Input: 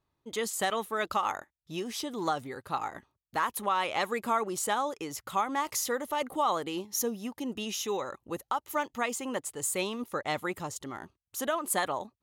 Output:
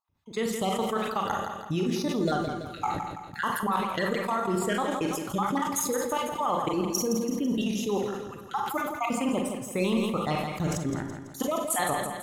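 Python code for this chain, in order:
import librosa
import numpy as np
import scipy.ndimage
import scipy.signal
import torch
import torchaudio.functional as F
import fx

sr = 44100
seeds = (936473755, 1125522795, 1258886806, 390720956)

y = fx.spec_dropout(x, sr, seeds[0], share_pct=38)
y = fx.peak_eq(y, sr, hz=110.0, db=12.0, octaves=2.7)
y = fx.transient(y, sr, attack_db=3, sustain_db=-5)
y = fx.level_steps(y, sr, step_db=16)
y = fx.echo_feedback(y, sr, ms=166, feedback_pct=50, wet_db=-8.5)
y = fx.rev_schroeder(y, sr, rt60_s=0.32, comb_ms=32, drr_db=4.5)
y = fx.sustainer(y, sr, db_per_s=40.0)
y = y * librosa.db_to_amplitude(4.5)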